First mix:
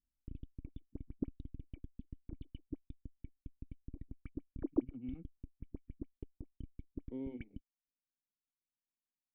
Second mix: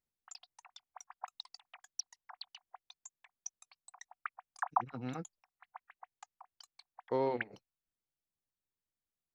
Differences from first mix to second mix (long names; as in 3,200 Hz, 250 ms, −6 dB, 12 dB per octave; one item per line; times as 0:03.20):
background: add Chebyshev high-pass with heavy ripple 720 Hz, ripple 3 dB
master: remove formant resonators in series i